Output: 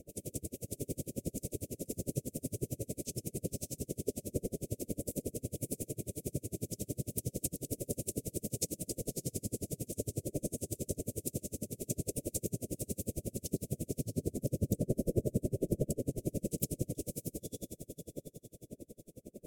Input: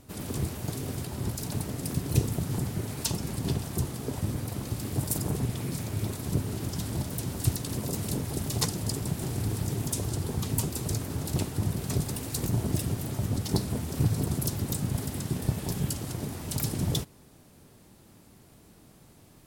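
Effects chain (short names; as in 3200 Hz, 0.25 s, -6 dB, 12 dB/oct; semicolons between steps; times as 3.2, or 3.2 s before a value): wind noise 330 Hz -35 dBFS; band shelf 2200 Hz -15.5 dB 2.6 oct; compressor, threshold -27 dBFS, peak gain reduction 11 dB; 14.05–16.18 tilt shelf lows +6.5 dB, about 1300 Hz; diffused feedback echo 0.596 s, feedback 40%, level -4 dB; overdrive pedal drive 15 dB, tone 5900 Hz, clips at -10.5 dBFS; elliptic band-stop 580–2300 Hz, stop band 40 dB; dB-linear tremolo 11 Hz, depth 37 dB; gain -1.5 dB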